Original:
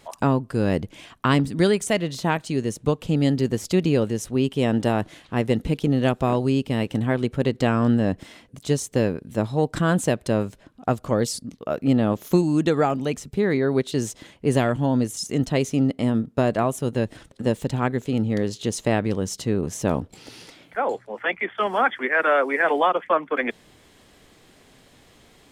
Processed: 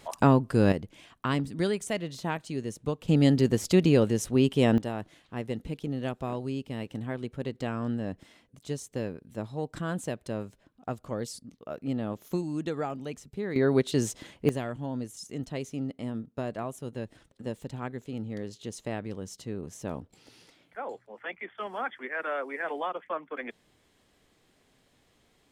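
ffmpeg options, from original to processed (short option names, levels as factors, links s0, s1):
-af "asetnsamples=n=441:p=0,asendcmd='0.72 volume volume -9dB;3.08 volume volume -1dB;4.78 volume volume -12dB;13.56 volume volume -2dB;14.49 volume volume -13dB',volume=1"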